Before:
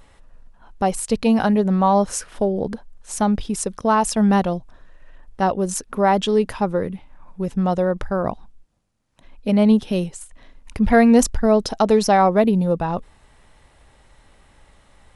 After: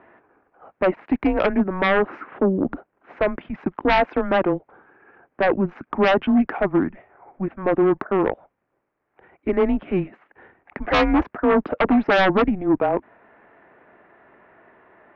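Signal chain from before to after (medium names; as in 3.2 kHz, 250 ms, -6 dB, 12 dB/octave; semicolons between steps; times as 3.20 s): mistuned SSB -190 Hz 390–2300 Hz; sine folder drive 10 dB, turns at -5 dBFS; trim -7.5 dB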